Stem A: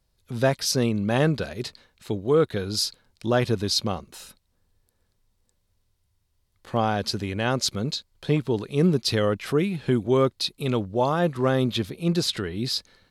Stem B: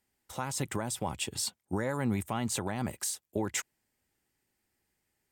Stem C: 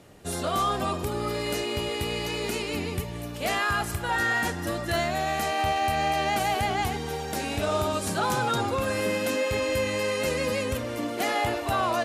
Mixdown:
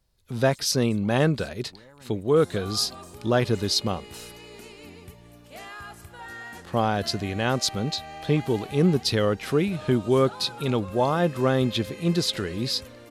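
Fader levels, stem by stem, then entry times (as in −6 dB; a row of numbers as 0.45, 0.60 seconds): 0.0, −19.0, −14.5 decibels; 0.00, 0.00, 2.10 seconds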